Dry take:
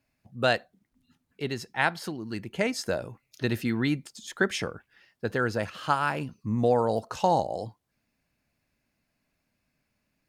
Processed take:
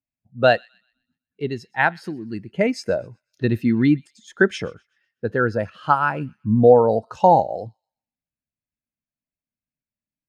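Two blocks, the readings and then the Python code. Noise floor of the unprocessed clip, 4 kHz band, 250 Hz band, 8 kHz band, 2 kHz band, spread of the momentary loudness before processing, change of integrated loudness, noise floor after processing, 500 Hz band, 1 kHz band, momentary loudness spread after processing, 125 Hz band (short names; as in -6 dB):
-78 dBFS, 0.0 dB, +8.5 dB, n/a, +6.0 dB, 11 LU, +9.0 dB, under -85 dBFS, +9.5 dB, +8.5 dB, 16 LU, +7.0 dB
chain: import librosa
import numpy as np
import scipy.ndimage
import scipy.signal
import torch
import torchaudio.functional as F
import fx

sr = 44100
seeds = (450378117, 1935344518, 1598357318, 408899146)

y = fx.echo_wet_highpass(x, sr, ms=125, feedback_pct=48, hz=1800.0, wet_db=-16)
y = fx.spectral_expand(y, sr, expansion=1.5)
y = F.gain(torch.from_numpy(y), 7.5).numpy()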